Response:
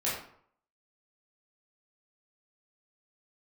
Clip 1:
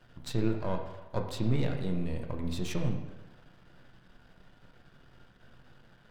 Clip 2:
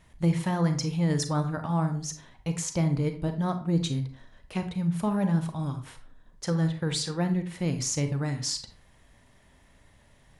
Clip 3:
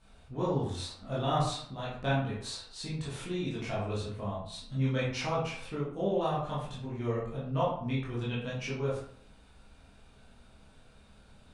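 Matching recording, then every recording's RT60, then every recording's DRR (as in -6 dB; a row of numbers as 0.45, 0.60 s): 3; 1.1, 0.40, 0.60 s; 2.5, 7.0, -8.5 dB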